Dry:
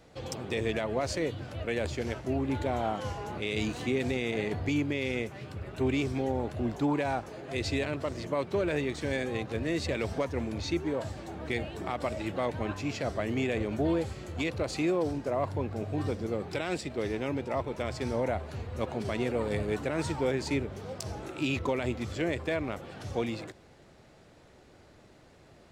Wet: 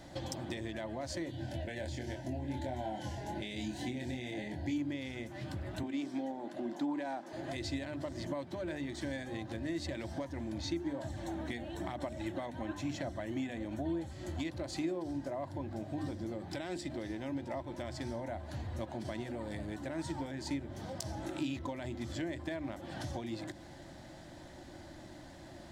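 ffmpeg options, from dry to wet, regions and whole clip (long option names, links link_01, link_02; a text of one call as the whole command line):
ffmpeg -i in.wav -filter_complex "[0:a]asettb=1/sr,asplit=3[link_01][link_02][link_03];[link_01]atrim=end=1.314[link_04];[link_02]atrim=start=1.31:end=4.78,asetpts=PTS-STARTPTS,afade=type=in:duration=0.004:curve=qsin,afade=type=out:start_time=3.466:duration=0.004:curve=qsin,asuperstop=centerf=1200:order=4:qfactor=2.4,asplit=2[link_05][link_06];[link_06]adelay=24,volume=-3.5dB[link_07];[link_05][link_07]amix=inputs=2:normalize=0,atrim=end_sample=153027[link_08];[link_03]atrim=start=4.776[link_09];[link_04][link_08]acrossfade=duration=0.004:curve1=hsin:curve2=qsin[link_10];[link_10][link_09]acrossfade=duration=0.004:curve1=qsin:curve2=hsin,asettb=1/sr,asplit=3[link_11][link_12][link_13];[link_11]atrim=end=5.834[link_14];[link_12]atrim=start=5.83:end=7.33,asetpts=PTS-STARTPTS,afade=type=in:duration=0.004:curve=qsin,afade=type=out:start_time=1.496:duration=0.004:curve=qsin,highpass=frequency=210:width=0.5412,highpass=frequency=210:width=1.3066,highshelf=frequency=7800:gain=-6[link_15];[link_13]atrim=start=7.326[link_16];[link_14][link_15]acrossfade=duration=0.004:curve1=hsin:curve2=qsin[link_17];[link_17][link_16]acrossfade=duration=0.004:curve1=qsin:curve2=hsin,asettb=1/sr,asplit=3[link_18][link_19][link_20];[link_18]atrim=end=11.034[link_21];[link_19]atrim=start=11.03:end=14.11,asetpts=PTS-STARTPTS,afade=type=in:duration=0.004:curve=qsin,afade=type=out:start_time=3.076:duration=0.004:curve=qsin,aphaser=in_gain=1:out_gain=1:delay=4.2:decay=0.33:speed=1:type=sinusoidal,bandreject=frequency=4800:width=7.4[link_22];[link_20]atrim=start=14.106[link_23];[link_21][link_22]acrossfade=duration=0.004:curve1=hsin:curve2=qsin[link_24];[link_24][link_23]acrossfade=duration=0.004:curve1=qsin:curve2=hsin,bandreject=frequency=50:width_type=h:width=6,bandreject=frequency=100:width_type=h:width=6,bandreject=frequency=150:width_type=h:width=6,bandreject=frequency=200:width_type=h:width=6,bandreject=frequency=250:width_type=h:width=6,bandreject=frequency=300:width_type=h:width=6,bandreject=frequency=350:width_type=h:width=6,bandreject=frequency=400:width_type=h:width=6,acompressor=threshold=-44dB:ratio=5,superequalizer=6b=1.58:7b=0.251:10b=0.501:12b=0.501,volume=6.5dB" out.wav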